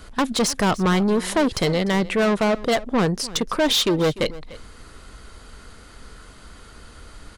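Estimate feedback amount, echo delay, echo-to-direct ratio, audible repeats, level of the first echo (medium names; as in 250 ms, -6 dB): no regular repeats, 297 ms, -18.5 dB, 1, -18.5 dB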